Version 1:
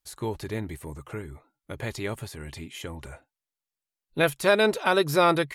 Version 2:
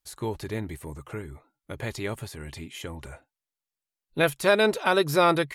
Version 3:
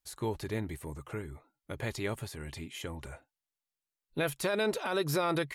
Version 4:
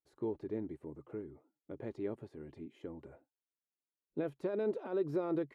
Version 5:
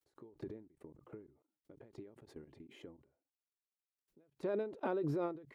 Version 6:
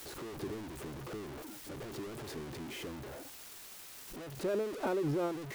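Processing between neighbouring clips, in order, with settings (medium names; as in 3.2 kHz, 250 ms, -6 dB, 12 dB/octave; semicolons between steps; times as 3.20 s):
no audible change
peak limiter -18 dBFS, peak gain reduction 10.5 dB; trim -3 dB
band-pass filter 330 Hz, Q 1.6
level held to a coarse grid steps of 24 dB; endings held to a fixed fall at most 120 dB/s; trim +13 dB
jump at every zero crossing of -40.5 dBFS; trim +1.5 dB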